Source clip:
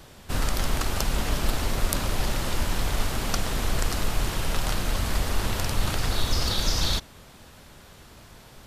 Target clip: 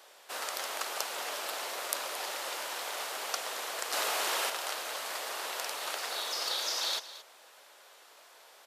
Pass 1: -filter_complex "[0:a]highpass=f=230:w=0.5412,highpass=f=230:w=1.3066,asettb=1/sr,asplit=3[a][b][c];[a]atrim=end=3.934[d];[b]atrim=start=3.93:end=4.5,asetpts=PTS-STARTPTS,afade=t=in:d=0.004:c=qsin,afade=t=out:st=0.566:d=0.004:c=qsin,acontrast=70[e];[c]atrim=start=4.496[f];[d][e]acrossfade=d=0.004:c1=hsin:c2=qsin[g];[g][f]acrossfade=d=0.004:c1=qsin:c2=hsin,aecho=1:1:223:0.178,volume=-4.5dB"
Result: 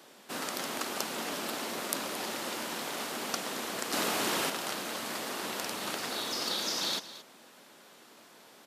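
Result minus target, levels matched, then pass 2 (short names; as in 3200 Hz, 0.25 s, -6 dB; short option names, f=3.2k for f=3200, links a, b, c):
250 Hz band +16.0 dB
-filter_complex "[0:a]highpass=f=490:w=0.5412,highpass=f=490:w=1.3066,asettb=1/sr,asplit=3[a][b][c];[a]atrim=end=3.934[d];[b]atrim=start=3.93:end=4.5,asetpts=PTS-STARTPTS,afade=t=in:d=0.004:c=qsin,afade=t=out:st=0.566:d=0.004:c=qsin,acontrast=70[e];[c]atrim=start=4.496[f];[d][e]acrossfade=d=0.004:c1=hsin:c2=qsin[g];[g][f]acrossfade=d=0.004:c1=qsin:c2=hsin,aecho=1:1:223:0.178,volume=-4.5dB"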